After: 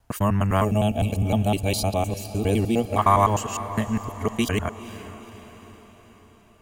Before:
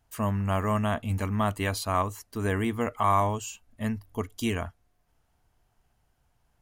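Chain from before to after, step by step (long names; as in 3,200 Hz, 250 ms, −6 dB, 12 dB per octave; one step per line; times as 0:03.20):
reversed piece by piece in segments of 102 ms
feedback delay with all-pass diffusion 467 ms, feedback 54%, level −14 dB
gain on a spectral selection 0:00.64–0:02.98, 880–2,200 Hz −18 dB
level +6 dB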